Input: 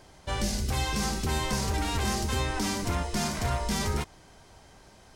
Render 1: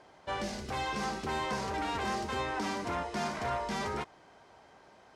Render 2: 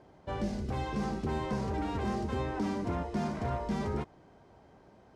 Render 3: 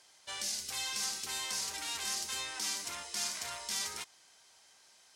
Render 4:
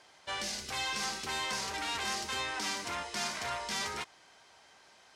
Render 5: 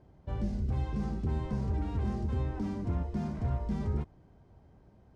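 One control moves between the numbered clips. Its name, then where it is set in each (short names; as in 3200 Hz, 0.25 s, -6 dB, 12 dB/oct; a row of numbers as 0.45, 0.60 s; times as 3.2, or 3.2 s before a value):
band-pass, frequency: 880, 320, 7200, 2600, 110 Hz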